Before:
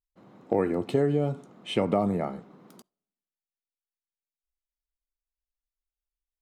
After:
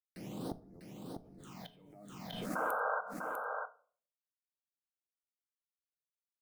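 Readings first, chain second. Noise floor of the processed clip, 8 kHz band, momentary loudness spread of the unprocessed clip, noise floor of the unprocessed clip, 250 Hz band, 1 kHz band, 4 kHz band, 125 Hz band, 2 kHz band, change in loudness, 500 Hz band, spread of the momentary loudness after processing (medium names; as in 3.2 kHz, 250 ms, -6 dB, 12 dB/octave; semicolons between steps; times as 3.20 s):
under -85 dBFS, no reading, 10 LU, under -85 dBFS, -15.5 dB, -2.5 dB, -11.0 dB, -17.5 dB, +3.5 dB, -12.5 dB, -15.0 dB, 18 LU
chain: treble shelf 6.5 kHz +10.5 dB; compression 3:1, threshold -40 dBFS, peak gain reduction 15.5 dB; bit crusher 10-bit; inverted gate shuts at -37 dBFS, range -39 dB; phase shifter stages 8, 0.33 Hz, lowest notch 100–3000 Hz; painted sound noise, 2.55–3.01 s, 430–1600 Hz -42 dBFS; on a send: delay 648 ms -5 dB; on the sum: simulated room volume 410 m³, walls furnished, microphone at 0.52 m; swell ahead of each attack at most 33 dB/s; trim +7 dB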